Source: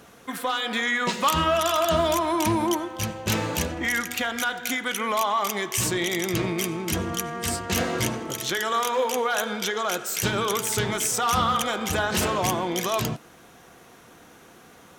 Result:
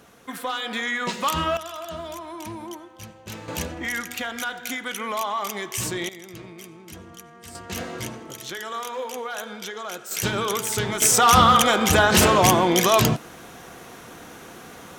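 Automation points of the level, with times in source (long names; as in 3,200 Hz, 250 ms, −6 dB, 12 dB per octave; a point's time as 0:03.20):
−2 dB
from 0:01.57 −12.5 dB
from 0:03.48 −3 dB
from 0:06.09 −15 dB
from 0:07.55 −7 dB
from 0:10.11 0 dB
from 0:11.02 +8 dB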